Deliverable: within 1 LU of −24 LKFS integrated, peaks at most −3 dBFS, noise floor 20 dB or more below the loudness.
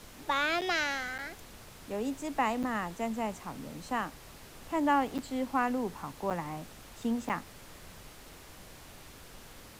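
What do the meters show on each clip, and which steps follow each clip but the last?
number of dropouts 6; longest dropout 7.5 ms; background noise floor −52 dBFS; target noise floor −53 dBFS; integrated loudness −33.0 LKFS; sample peak −15.5 dBFS; target loudness −24.0 LKFS
→ repair the gap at 0:00.61/0:01.18/0:02.63/0:05.18/0:06.30/0:07.29, 7.5 ms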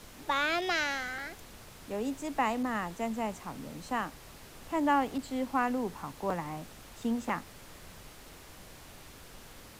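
number of dropouts 0; background noise floor −52 dBFS; target noise floor −53 dBFS
→ noise reduction from a noise print 6 dB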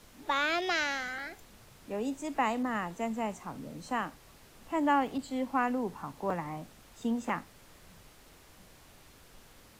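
background noise floor −57 dBFS; integrated loudness −33.0 LKFS; sample peak −15.5 dBFS; target loudness −24.0 LKFS
→ level +9 dB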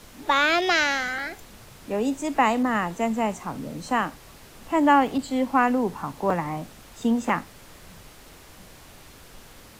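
integrated loudness −24.0 LKFS; sample peak −6.5 dBFS; background noise floor −48 dBFS

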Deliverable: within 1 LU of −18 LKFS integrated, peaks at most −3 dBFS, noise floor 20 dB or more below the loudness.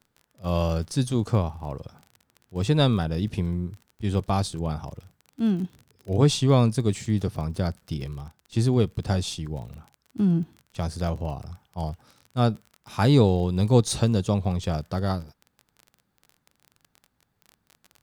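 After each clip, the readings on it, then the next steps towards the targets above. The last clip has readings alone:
crackle rate 30 per second; integrated loudness −25.5 LKFS; sample peak −7.0 dBFS; target loudness −18.0 LKFS
→ click removal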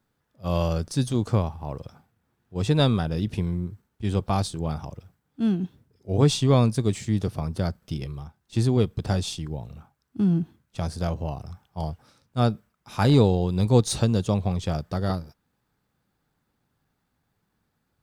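crackle rate 0.72 per second; integrated loudness −25.5 LKFS; sample peak −7.0 dBFS; target loudness −18.0 LKFS
→ level +7.5 dB
brickwall limiter −3 dBFS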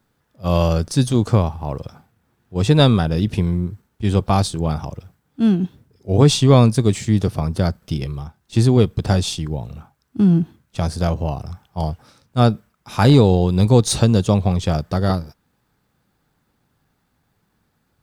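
integrated loudness −18.0 LKFS; sample peak −3.0 dBFS; background noise floor −68 dBFS

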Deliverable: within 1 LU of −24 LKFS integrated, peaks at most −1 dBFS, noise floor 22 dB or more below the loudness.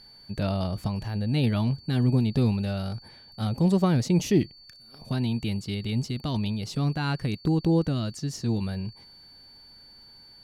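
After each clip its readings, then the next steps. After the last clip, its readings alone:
crackle rate 22 per second; interfering tone 4,500 Hz; level of the tone −49 dBFS; integrated loudness −27.0 LKFS; sample peak −10.5 dBFS; target loudness −24.0 LKFS
→ click removal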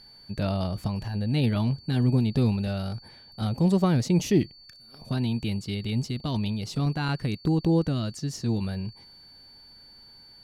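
crackle rate 0.77 per second; interfering tone 4,500 Hz; level of the tone −49 dBFS
→ notch filter 4,500 Hz, Q 30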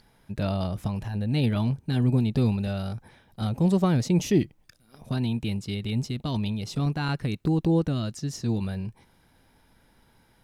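interfering tone none found; integrated loudness −27.0 LKFS; sample peak −10.5 dBFS; target loudness −24.0 LKFS
→ level +3 dB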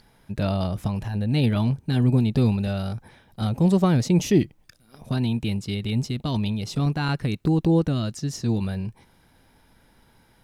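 integrated loudness −24.0 LKFS; sample peak −7.5 dBFS; background noise floor −59 dBFS

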